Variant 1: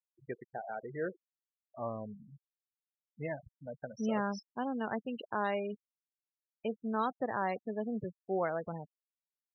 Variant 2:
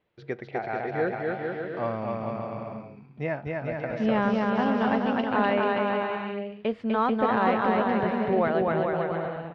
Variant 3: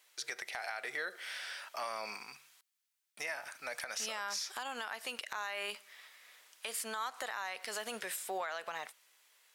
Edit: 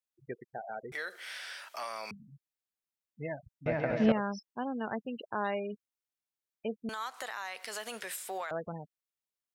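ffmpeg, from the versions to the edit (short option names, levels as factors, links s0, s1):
-filter_complex "[2:a]asplit=2[s0][s1];[0:a]asplit=4[s2][s3][s4][s5];[s2]atrim=end=0.922[s6];[s0]atrim=start=0.918:end=2.112[s7];[s3]atrim=start=2.108:end=3.662[s8];[1:a]atrim=start=3.658:end=4.122[s9];[s4]atrim=start=4.118:end=6.892[s10];[s1]atrim=start=6.888:end=8.512[s11];[s5]atrim=start=8.508[s12];[s6][s7]acrossfade=d=0.004:c1=hsin:c2=hsin[s13];[s13][s8]acrossfade=d=0.004:c1=hsin:c2=hsin[s14];[s14][s9]acrossfade=d=0.004:c1=hsin:c2=hsin[s15];[s15][s10]acrossfade=d=0.004:c1=hsin:c2=hsin[s16];[s16][s11]acrossfade=d=0.004:c1=hsin:c2=hsin[s17];[s17][s12]acrossfade=d=0.004:c1=hsin:c2=hsin"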